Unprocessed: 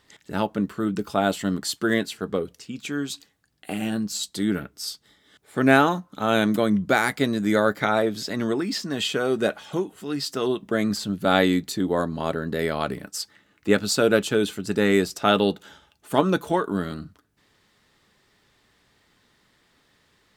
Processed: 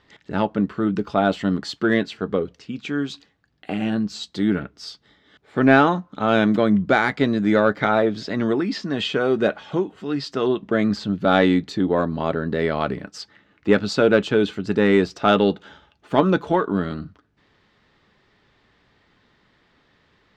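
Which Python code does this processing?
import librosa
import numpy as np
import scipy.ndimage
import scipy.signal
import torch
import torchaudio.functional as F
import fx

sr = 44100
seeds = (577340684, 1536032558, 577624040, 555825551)

p1 = fx.air_absorb(x, sr, metres=180.0)
p2 = 10.0 ** (-13.0 / 20.0) * np.tanh(p1 / 10.0 ** (-13.0 / 20.0))
y = p1 + (p2 * librosa.db_to_amplitude(-4.0))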